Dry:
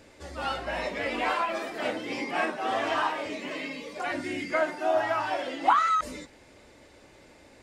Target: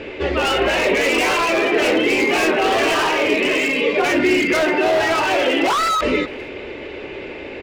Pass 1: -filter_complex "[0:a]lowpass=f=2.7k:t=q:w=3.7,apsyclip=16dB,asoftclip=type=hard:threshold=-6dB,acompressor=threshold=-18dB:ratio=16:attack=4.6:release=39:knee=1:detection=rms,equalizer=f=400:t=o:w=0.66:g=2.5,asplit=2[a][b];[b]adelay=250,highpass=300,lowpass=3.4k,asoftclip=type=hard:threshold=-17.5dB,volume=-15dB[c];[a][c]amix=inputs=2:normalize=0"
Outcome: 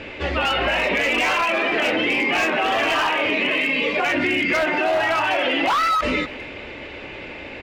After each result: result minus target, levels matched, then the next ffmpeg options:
hard clip: distortion -7 dB; 500 Hz band -3.5 dB
-filter_complex "[0:a]lowpass=f=2.7k:t=q:w=3.7,apsyclip=16dB,asoftclip=type=hard:threshold=-12dB,acompressor=threshold=-18dB:ratio=16:attack=4.6:release=39:knee=1:detection=rms,equalizer=f=400:t=o:w=0.66:g=2.5,asplit=2[a][b];[b]adelay=250,highpass=300,lowpass=3.4k,asoftclip=type=hard:threshold=-17.5dB,volume=-15dB[c];[a][c]amix=inputs=2:normalize=0"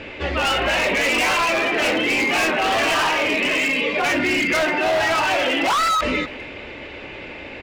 500 Hz band -3.5 dB
-filter_complex "[0:a]lowpass=f=2.7k:t=q:w=3.7,apsyclip=16dB,asoftclip=type=hard:threshold=-12dB,acompressor=threshold=-18dB:ratio=16:attack=4.6:release=39:knee=1:detection=rms,equalizer=f=400:t=o:w=0.66:g=13.5,asplit=2[a][b];[b]adelay=250,highpass=300,lowpass=3.4k,asoftclip=type=hard:threshold=-17.5dB,volume=-15dB[c];[a][c]amix=inputs=2:normalize=0"

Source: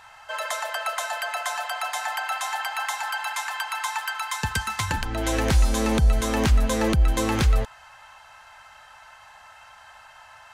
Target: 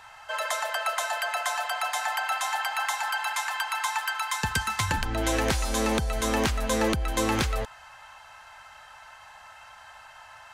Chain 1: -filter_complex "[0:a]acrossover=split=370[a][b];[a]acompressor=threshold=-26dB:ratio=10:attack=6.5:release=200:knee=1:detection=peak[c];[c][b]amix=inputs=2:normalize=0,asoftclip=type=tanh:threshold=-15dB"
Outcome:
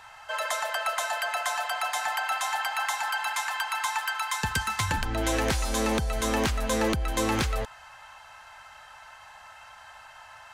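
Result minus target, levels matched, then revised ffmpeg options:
soft clip: distortion +16 dB
-filter_complex "[0:a]acrossover=split=370[a][b];[a]acompressor=threshold=-26dB:ratio=10:attack=6.5:release=200:knee=1:detection=peak[c];[c][b]amix=inputs=2:normalize=0,asoftclip=type=tanh:threshold=-5.5dB"

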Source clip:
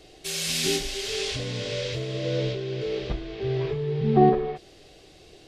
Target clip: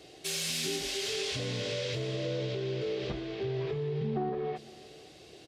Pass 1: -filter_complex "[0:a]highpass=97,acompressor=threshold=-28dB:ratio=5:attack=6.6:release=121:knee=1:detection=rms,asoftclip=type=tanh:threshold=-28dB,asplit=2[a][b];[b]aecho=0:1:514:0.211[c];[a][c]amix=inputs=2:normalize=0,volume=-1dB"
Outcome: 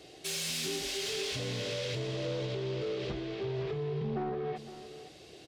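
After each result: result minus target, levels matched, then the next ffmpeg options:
soft clip: distortion +10 dB; echo-to-direct +8 dB
-filter_complex "[0:a]highpass=97,acompressor=threshold=-28dB:ratio=5:attack=6.6:release=121:knee=1:detection=rms,asoftclip=type=tanh:threshold=-21dB,asplit=2[a][b];[b]aecho=0:1:514:0.211[c];[a][c]amix=inputs=2:normalize=0,volume=-1dB"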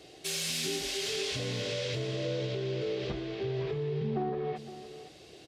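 echo-to-direct +8 dB
-filter_complex "[0:a]highpass=97,acompressor=threshold=-28dB:ratio=5:attack=6.6:release=121:knee=1:detection=rms,asoftclip=type=tanh:threshold=-21dB,asplit=2[a][b];[b]aecho=0:1:514:0.0841[c];[a][c]amix=inputs=2:normalize=0,volume=-1dB"

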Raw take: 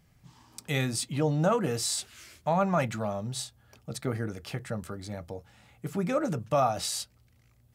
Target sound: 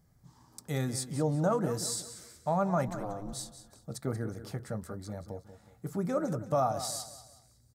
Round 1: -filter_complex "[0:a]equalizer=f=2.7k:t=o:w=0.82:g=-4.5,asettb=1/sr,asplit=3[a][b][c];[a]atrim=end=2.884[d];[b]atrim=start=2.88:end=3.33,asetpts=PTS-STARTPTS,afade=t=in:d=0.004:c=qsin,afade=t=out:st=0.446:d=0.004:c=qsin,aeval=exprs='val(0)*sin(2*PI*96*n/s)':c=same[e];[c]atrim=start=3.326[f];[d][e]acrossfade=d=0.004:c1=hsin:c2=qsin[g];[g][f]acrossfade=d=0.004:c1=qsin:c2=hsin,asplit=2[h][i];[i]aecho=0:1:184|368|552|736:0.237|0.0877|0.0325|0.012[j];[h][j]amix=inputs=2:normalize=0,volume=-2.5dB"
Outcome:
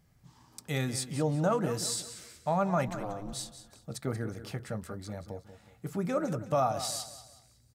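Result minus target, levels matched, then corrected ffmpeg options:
2000 Hz band +4.0 dB
-filter_complex "[0:a]equalizer=f=2.7k:t=o:w=0.82:g=-15.5,asettb=1/sr,asplit=3[a][b][c];[a]atrim=end=2.884[d];[b]atrim=start=2.88:end=3.33,asetpts=PTS-STARTPTS,afade=t=in:d=0.004:c=qsin,afade=t=out:st=0.446:d=0.004:c=qsin,aeval=exprs='val(0)*sin(2*PI*96*n/s)':c=same[e];[c]atrim=start=3.326[f];[d][e]acrossfade=d=0.004:c1=hsin:c2=qsin[g];[g][f]acrossfade=d=0.004:c1=qsin:c2=hsin,asplit=2[h][i];[i]aecho=0:1:184|368|552|736:0.237|0.0877|0.0325|0.012[j];[h][j]amix=inputs=2:normalize=0,volume=-2.5dB"

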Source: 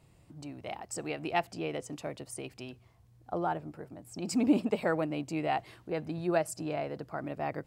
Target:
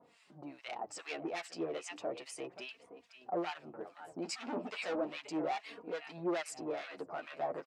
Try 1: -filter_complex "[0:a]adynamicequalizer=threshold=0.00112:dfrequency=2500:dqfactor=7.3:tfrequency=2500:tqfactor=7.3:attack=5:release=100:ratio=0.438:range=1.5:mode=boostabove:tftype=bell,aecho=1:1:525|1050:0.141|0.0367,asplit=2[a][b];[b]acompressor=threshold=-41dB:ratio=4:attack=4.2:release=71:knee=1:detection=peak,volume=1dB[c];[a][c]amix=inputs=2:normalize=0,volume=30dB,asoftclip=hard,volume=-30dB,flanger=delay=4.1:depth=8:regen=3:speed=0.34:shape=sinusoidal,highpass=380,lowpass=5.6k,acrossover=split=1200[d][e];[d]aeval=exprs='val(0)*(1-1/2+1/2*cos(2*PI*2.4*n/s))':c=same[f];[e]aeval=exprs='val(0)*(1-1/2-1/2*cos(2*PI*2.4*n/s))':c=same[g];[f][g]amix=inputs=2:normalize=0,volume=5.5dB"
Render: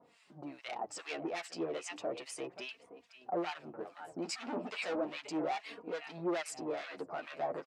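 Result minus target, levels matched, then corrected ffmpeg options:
compressor: peak gain reduction -6.5 dB
-filter_complex "[0:a]adynamicequalizer=threshold=0.00112:dfrequency=2500:dqfactor=7.3:tfrequency=2500:tqfactor=7.3:attack=5:release=100:ratio=0.438:range=1.5:mode=boostabove:tftype=bell,aecho=1:1:525|1050:0.141|0.0367,asplit=2[a][b];[b]acompressor=threshold=-49.5dB:ratio=4:attack=4.2:release=71:knee=1:detection=peak,volume=1dB[c];[a][c]amix=inputs=2:normalize=0,volume=30dB,asoftclip=hard,volume=-30dB,flanger=delay=4.1:depth=8:regen=3:speed=0.34:shape=sinusoidal,highpass=380,lowpass=5.6k,acrossover=split=1200[d][e];[d]aeval=exprs='val(0)*(1-1/2+1/2*cos(2*PI*2.4*n/s))':c=same[f];[e]aeval=exprs='val(0)*(1-1/2-1/2*cos(2*PI*2.4*n/s))':c=same[g];[f][g]amix=inputs=2:normalize=0,volume=5.5dB"

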